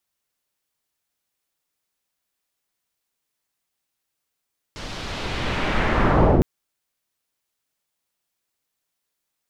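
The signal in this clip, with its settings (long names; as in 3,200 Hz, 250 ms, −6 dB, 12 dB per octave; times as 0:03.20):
filter sweep on noise pink, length 1.66 s lowpass, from 5,100 Hz, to 320 Hz, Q 1.2, linear, gain ramp +23 dB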